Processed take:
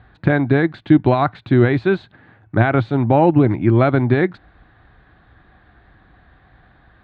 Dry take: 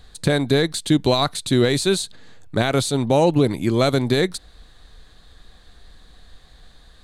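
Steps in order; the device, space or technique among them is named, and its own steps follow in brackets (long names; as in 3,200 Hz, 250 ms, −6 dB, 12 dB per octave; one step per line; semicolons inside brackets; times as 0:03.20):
bass cabinet (loudspeaker in its box 65–2,300 Hz, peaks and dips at 110 Hz +8 dB, 330 Hz +5 dB, 470 Hz −7 dB, 780 Hz +4 dB, 1,500 Hz +4 dB)
level +2.5 dB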